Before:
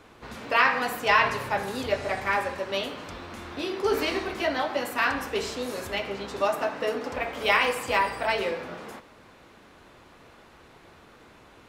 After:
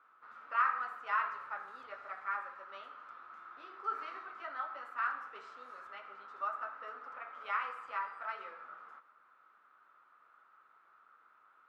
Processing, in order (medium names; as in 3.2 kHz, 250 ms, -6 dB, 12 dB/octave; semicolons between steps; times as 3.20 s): band-pass filter 1.3 kHz, Q 11; trim +1 dB